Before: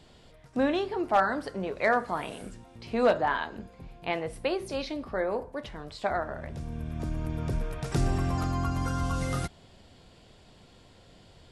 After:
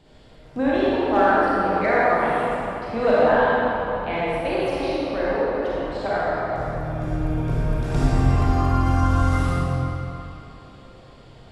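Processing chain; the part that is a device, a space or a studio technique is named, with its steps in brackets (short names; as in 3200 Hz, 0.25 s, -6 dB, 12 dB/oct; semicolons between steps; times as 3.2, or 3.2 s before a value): swimming-pool hall (reverb RT60 3.5 s, pre-delay 33 ms, DRR -8.5 dB; high shelf 3500 Hz -7.5 dB)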